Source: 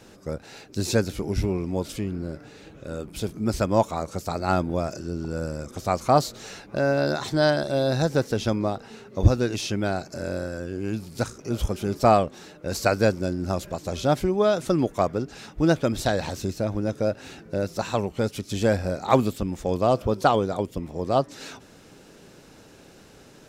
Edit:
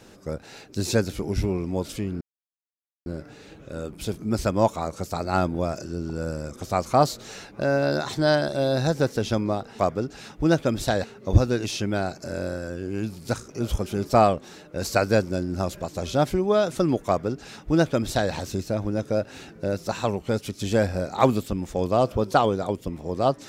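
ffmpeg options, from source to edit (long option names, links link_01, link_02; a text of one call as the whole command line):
ffmpeg -i in.wav -filter_complex "[0:a]asplit=4[link_01][link_02][link_03][link_04];[link_01]atrim=end=2.21,asetpts=PTS-STARTPTS,afade=type=out:start_time=2.206:duration=0.004:curve=hsin,apad=pad_dur=0.85[link_05];[link_02]atrim=start=2.21:end=8.942,asetpts=PTS-STARTPTS,afade=type=in:duration=0.004:curve=hsin[link_06];[link_03]atrim=start=14.968:end=16.222[link_07];[link_04]atrim=start=8.938[link_08];[link_05][link_06]concat=n=2:v=0:a=1[link_09];[link_09][link_07]acrossfade=duration=0.004:curve1=hsin:curve2=hsin[link_10];[link_10][link_08]acrossfade=duration=0.004:curve1=hsin:curve2=hsin" out.wav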